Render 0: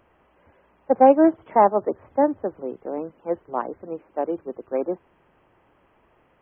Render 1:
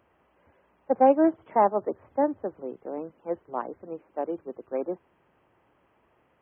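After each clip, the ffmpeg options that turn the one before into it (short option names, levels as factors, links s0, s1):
-af "highpass=57,volume=0.562"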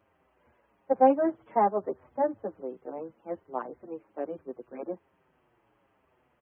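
-filter_complex "[0:a]asplit=2[s0][s1];[s1]adelay=7,afreqshift=-1.2[s2];[s0][s2]amix=inputs=2:normalize=1"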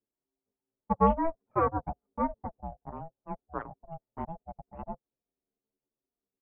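-af "anlmdn=0.398,aeval=exprs='val(0)*sin(2*PI*330*n/s)':c=same"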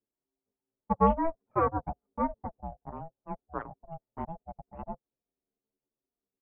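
-af anull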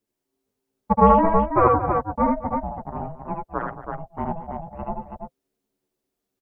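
-af "aecho=1:1:74|82|87|224|328:0.631|0.447|0.106|0.188|0.531,volume=2.51"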